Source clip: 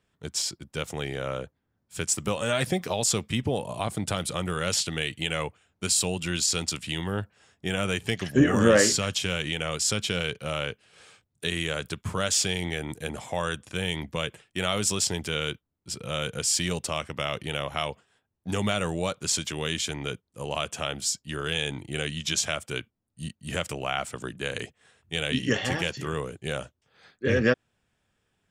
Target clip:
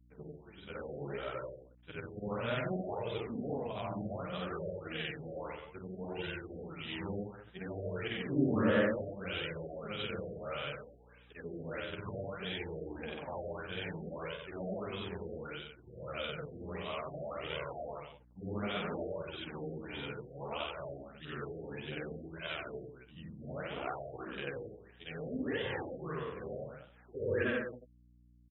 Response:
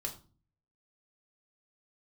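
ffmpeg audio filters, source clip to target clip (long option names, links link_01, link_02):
-filter_complex "[0:a]afftfilt=real='re':imag='-im':win_size=8192:overlap=0.75,lowpass=11000,lowshelf=frequency=110:gain=-8.5,asplit=2[link_01][link_02];[link_02]acompressor=threshold=-40dB:ratio=12,volume=-2dB[link_03];[link_01][link_03]amix=inputs=2:normalize=0,acrusher=bits=9:mix=0:aa=0.000001,asplit=2[link_04][link_05];[link_05]aecho=0:1:49.56|183.7:0.708|0.355[link_06];[link_04][link_06]amix=inputs=2:normalize=0,flanger=delay=1.9:depth=8.1:regen=-9:speed=0.62:shape=sinusoidal,aeval=exprs='val(0)+0.00126*(sin(2*PI*60*n/s)+sin(2*PI*2*60*n/s)/2+sin(2*PI*3*60*n/s)/3+sin(2*PI*4*60*n/s)/4+sin(2*PI*5*60*n/s)/5)':channel_layout=same,afftfilt=real='re*lt(b*sr/1024,740*pow(4000/740,0.5+0.5*sin(2*PI*1.6*pts/sr)))':imag='im*lt(b*sr/1024,740*pow(4000/740,0.5+0.5*sin(2*PI*1.6*pts/sr)))':win_size=1024:overlap=0.75,volume=-4dB"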